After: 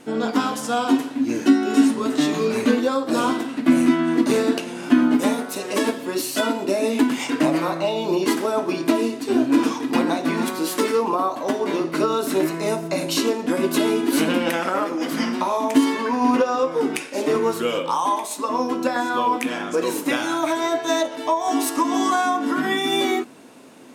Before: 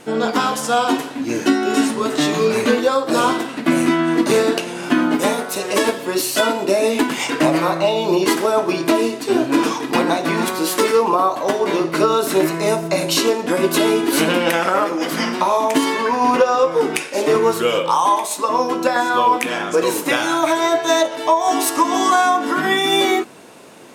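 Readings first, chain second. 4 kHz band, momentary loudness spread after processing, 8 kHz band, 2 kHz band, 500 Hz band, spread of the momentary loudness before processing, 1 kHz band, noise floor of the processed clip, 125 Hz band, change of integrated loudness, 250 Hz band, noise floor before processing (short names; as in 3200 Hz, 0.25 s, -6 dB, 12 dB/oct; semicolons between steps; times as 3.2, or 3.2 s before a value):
-6.0 dB, 5 LU, -6.0 dB, -6.0 dB, -5.5 dB, 4 LU, -6.0 dB, -33 dBFS, -5.0 dB, -4.0 dB, 0.0 dB, -29 dBFS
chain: bell 260 Hz +10.5 dB 0.36 oct; gain -6 dB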